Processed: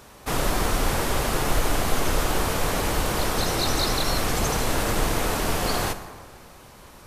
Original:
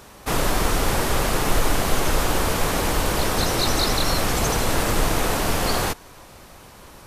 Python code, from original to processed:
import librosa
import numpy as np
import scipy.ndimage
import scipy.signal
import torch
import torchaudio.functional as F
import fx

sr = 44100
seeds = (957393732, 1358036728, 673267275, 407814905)

y = fx.rev_plate(x, sr, seeds[0], rt60_s=1.7, hf_ratio=0.55, predelay_ms=0, drr_db=9.0)
y = y * librosa.db_to_amplitude(-3.0)